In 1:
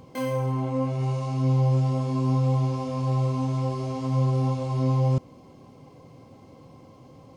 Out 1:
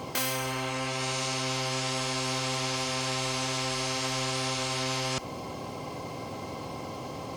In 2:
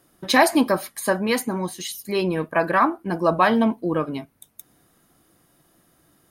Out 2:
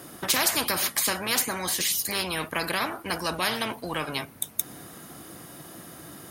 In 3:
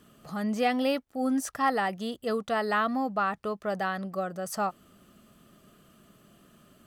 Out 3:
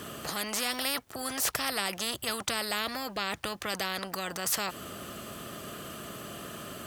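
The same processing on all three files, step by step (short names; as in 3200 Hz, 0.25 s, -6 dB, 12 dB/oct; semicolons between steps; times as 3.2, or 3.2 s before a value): HPF 84 Hz 12 dB/oct; spectral compressor 4:1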